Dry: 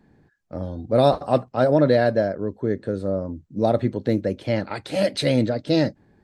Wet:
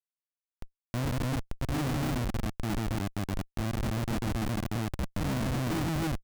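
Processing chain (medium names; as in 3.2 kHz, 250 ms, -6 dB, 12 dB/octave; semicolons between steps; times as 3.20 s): brick-wall FIR band-stop 360–5800 Hz; loudspeakers at several distances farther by 49 m -2 dB, 95 m 0 dB; Schmitt trigger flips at -21.5 dBFS; trim -7 dB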